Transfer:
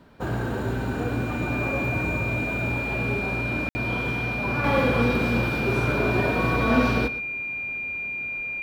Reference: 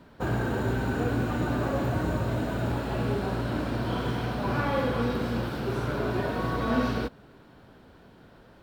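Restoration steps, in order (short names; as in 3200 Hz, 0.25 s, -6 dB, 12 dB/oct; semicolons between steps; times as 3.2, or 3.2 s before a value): notch 2400 Hz, Q 30; room tone fill 3.69–3.75; inverse comb 0.118 s -15.5 dB; gain correction -5 dB, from 4.64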